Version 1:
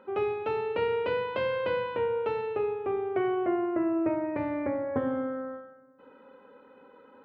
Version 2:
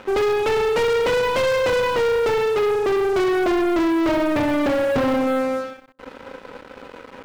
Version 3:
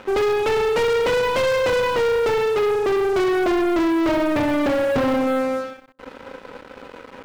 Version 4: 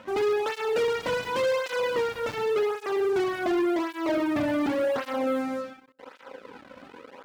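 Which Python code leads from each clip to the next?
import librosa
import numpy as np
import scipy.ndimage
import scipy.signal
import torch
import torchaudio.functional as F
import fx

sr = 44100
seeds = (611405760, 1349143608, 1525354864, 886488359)

y1 = fx.leveller(x, sr, passes=5)
y2 = y1
y3 = fx.flanger_cancel(y2, sr, hz=0.89, depth_ms=2.6)
y3 = y3 * librosa.db_to_amplitude(-4.0)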